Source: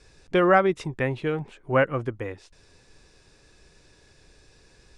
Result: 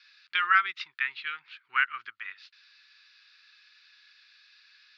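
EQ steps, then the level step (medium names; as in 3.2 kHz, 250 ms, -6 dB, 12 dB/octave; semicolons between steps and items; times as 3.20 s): elliptic band-pass 1.3–4.5 kHz, stop band 40 dB; treble shelf 2.2 kHz +8 dB; 0.0 dB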